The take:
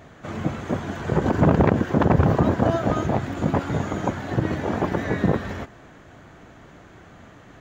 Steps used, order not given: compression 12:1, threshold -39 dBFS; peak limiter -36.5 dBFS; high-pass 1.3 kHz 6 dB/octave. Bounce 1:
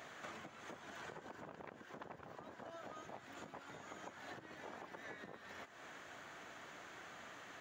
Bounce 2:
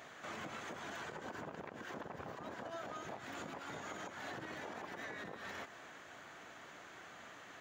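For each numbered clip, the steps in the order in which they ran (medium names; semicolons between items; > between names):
compression > high-pass > peak limiter; high-pass > compression > peak limiter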